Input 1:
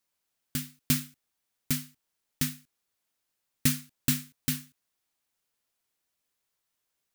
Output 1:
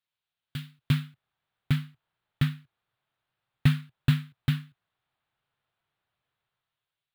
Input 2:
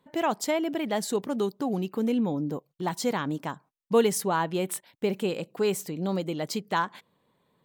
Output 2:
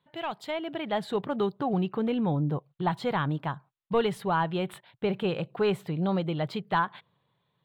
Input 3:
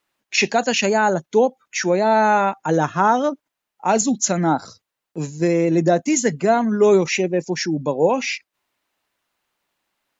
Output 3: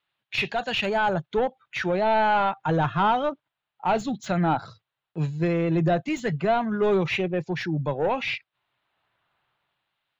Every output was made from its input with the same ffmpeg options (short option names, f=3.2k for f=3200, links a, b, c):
-filter_complex "[0:a]asplit=2[a][b];[b]highpass=f=720:p=1,volume=14dB,asoftclip=type=tanh:threshold=-4.5dB[c];[a][c]amix=inputs=2:normalize=0,lowpass=f=2.1k:p=1,volume=-6dB,highshelf=f=4.7k:t=q:w=3:g=-8.5,acrossover=split=1800[d][e];[d]dynaudnorm=f=140:g=11:m=13dB[f];[f][e]amix=inputs=2:normalize=0,equalizer=f=125:t=o:w=1:g=11,equalizer=f=250:t=o:w=1:g=-11,equalizer=f=500:t=o:w=1:g=-8,equalizer=f=1k:t=o:w=1:g=-6,equalizer=f=2k:t=o:w=1:g=-6,equalizer=f=4k:t=o:w=1:g=-4,volume=-4.5dB"